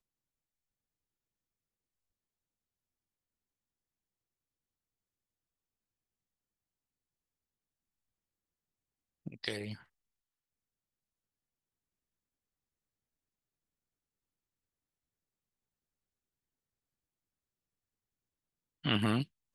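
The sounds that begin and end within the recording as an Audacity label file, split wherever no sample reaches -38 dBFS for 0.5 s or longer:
9.270000	9.740000	sound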